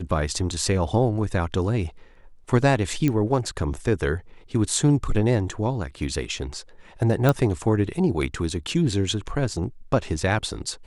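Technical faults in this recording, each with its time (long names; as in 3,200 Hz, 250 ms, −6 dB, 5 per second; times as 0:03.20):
0:03.08: click −11 dBFS
0:07.29: click −7 dBFS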